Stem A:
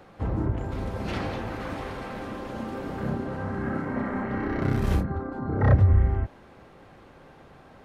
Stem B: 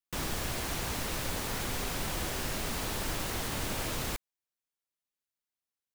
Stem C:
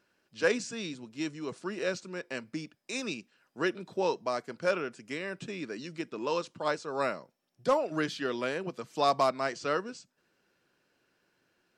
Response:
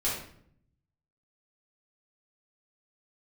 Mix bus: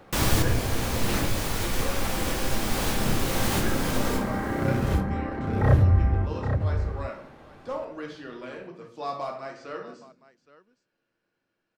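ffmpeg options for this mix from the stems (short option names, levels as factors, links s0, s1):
-filter_complex "[0:a]volume=0.841,asplit=3[s0][s1][s2];[s0]atrim=end=1.26,asetpts=PTS-STARTPTS,afade=t=out:st=1.256:d=0.004:c=hsin[s3];[s1]atrim=start=1.26:end=1.79,asetpts=PTS-STARTPTS,volume=0[s4];[s2]atrim=start=1.79,asetpts=PTS-STARTPTS,afade=t=in:d=0.004:c=hsin[s5];[s3][s4][s5]concat=n=3:v=0:a=1,asplit=3[s6][s7][s8];[s7]volume=0.168[s9];[s8]volume=0.501[s10];[1:a]acontrast=47,volume=1.26,asplit=3[s11][s12][s13];[s12]volume=0.2[s14];[s13]volume=0.1[s15];[2:a]highshelf=f=4800:g=-9,volume=0.224,asplit=4[s16][s17][s18][s19];[s17]volume=0.668[s20];[s18]volume=0.224[s21];[s19]apad=whole_len=262200[s22];[s11][s22]sidechaincompress=threshold=0.00224:ratio=8:attack=8.1:release=739[s23];[3:a]atrim=start_sample=2205[s24];[s9][s14][s20]amix=inputs=3:normalize=0[s25];[s25][s24]afir=irnorm=-1:irlink=0[s26];[s10][s15][s21]amix=inputs=3:normalize=0,aecho=0:1:820:1[s27];[s6][s23][s16][s26][s27]amix=inputs=5:normalize=0"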